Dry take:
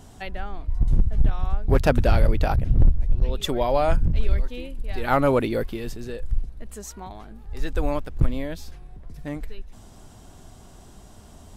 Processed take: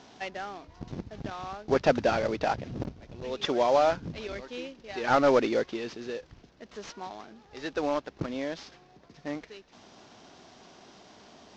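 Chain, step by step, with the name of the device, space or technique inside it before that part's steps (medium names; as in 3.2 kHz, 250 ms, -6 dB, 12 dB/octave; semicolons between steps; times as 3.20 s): early wireless headset (high-pass 270 Hz 12 dB/octave; CVSD coder 32 kbps)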